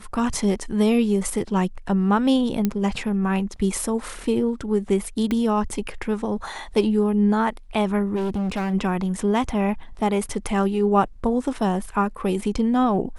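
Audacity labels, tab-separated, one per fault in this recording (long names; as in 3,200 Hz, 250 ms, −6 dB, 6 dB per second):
2.650000	2.650000	click −9 dBFS
5.310000	5.310000	click −13 dBFS
8.150000	8.740000	clipping −21.5 dBFS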